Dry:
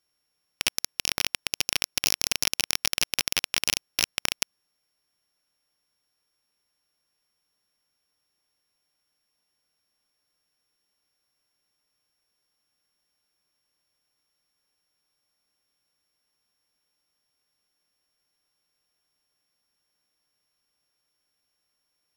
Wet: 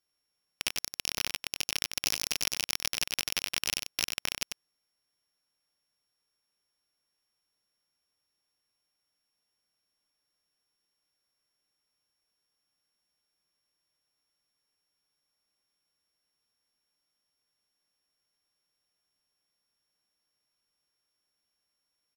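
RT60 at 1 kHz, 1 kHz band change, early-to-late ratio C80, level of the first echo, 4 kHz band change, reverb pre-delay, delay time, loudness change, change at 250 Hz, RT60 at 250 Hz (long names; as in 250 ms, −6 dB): no reverb audible, −5.0 dB, no reverb audible, −6.5 dB, −5.0 dB, no reverb audible, 94 ms, −5.0 dB, −5.0 dB, no reverb audible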